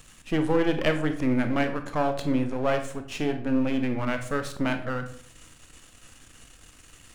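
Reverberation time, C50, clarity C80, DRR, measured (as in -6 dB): 0.60 s, 10.0 dB, 14.0 dB, 7.0 dB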